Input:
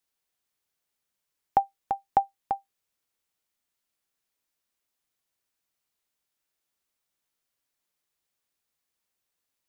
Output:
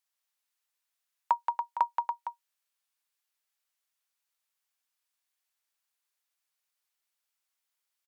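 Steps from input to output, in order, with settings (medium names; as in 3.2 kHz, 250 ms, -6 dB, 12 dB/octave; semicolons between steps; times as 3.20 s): high-pass 690 Hz 12 dB/octave; tape speed +20%; delay 176 ms -4.5 dB; trim -1.5 dB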